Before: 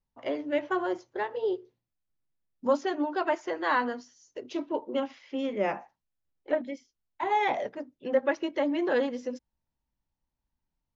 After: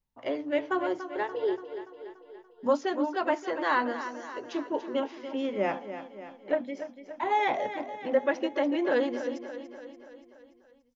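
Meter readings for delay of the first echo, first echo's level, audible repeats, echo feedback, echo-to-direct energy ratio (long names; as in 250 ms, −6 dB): 288 ms, −11.0 dB, 5, 57%, −9.5 dB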